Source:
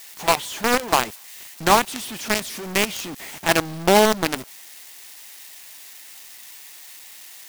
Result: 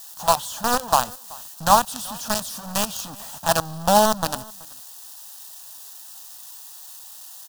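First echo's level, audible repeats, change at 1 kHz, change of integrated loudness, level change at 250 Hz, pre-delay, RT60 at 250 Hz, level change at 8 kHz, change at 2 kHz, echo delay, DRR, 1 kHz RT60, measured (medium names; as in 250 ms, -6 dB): -23.5 dB, 1, +1.5 dB, -1.0 dB, -3.5 dB, no reverb, no reverb, +1.0 dB, -7.5 dB, 379 ms, no reverb, no reverb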